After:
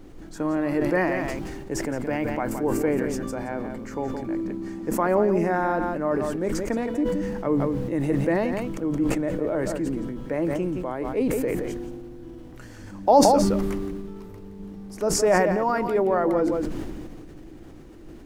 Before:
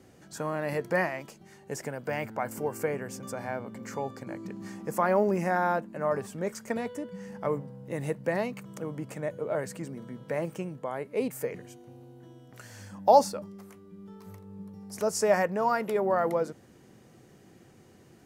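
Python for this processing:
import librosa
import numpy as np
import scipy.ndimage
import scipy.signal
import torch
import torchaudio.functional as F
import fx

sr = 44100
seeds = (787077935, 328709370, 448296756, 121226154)

p1 = fx.high_shelf(x, sr, hz=5100.0, db=-7.5)
p2 = fx.dmg_noise_colour(p1, sr, seeds[0], colour='brown', level_db=-48.0)
p3 = fx.peak_eq(p2, sr, hz=310.0, db=13.5, octaves=0.46)
p4 = p3 + fx.echo_single(p3, sr, ms=171, db=-10.0, dry=0)
p5 = fx.sustainer(p4, sr, db_per_s=25.0)
y = p5 * 10.0 ** (1.0 / 20.0)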